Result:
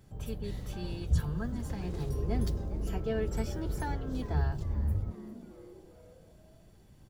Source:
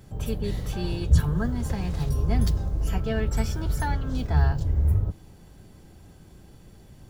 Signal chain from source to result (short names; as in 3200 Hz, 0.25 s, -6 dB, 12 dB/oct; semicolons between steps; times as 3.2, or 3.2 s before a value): 1.83–4.41 bell 380 Hz +9 dB 1 oct; frequency-shifting echo 0.401 s, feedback 48%, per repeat +140 Hz, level -17 dB; gain -9 dB